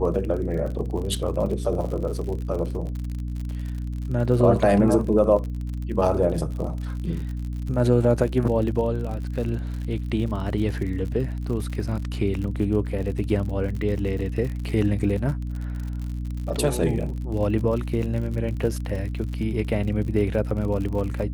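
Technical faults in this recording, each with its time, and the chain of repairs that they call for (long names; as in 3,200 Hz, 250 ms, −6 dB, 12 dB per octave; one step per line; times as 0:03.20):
surface crackle 56 per second −31 dBFS
mains hum 60 Hz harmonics 5 −29 dBFS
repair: click removal
hum removal 60 Hz, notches 5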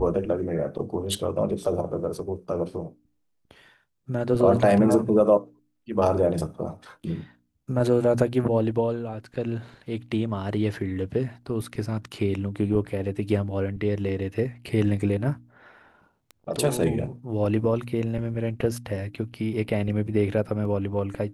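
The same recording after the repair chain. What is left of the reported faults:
none of them is left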